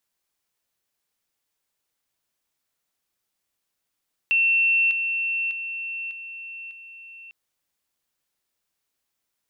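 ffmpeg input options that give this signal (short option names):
-f lavfi -i "aevalsrc='pow(10,(-16.5-6*floor(t/0.6))/20)*sin(2*PI*2700*t)':d=3:s=44100"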